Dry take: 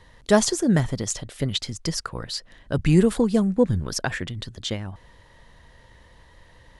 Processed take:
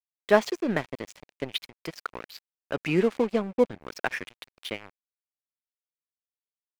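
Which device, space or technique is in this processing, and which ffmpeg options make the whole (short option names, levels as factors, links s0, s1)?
pocket radio on a weak battery: -af "highpass=320,lowpass=3300,aeval=exprs='sgn(val(0))*max(abs(val(0))-0.0141,0)':c=same,equalizer=f=2400:t=o:w=0.42:g=7"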